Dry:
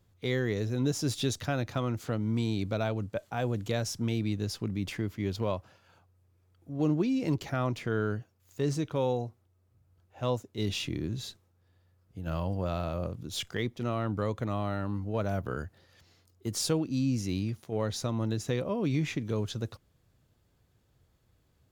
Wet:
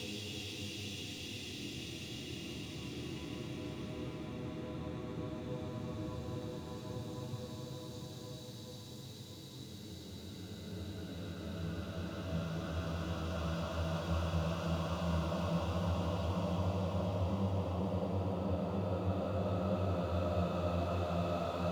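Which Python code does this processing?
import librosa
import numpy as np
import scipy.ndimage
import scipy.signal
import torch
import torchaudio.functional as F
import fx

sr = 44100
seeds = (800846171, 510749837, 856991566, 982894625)

y = fx.echo_feedback(x, sr, ms=780, feedback_pct=41, wet_db=-5.0)
y = np.sign(y) * np.maximum(np.abs(y) - 10.0 ** (-51.0 / 20.0), 0.0)
y = fx.paulstretch(y, sr, seeds[0], factor=18.0, window_s=0.5, from_s=11.53)
y = y * 10.0 ** (-3.0 / 20.0)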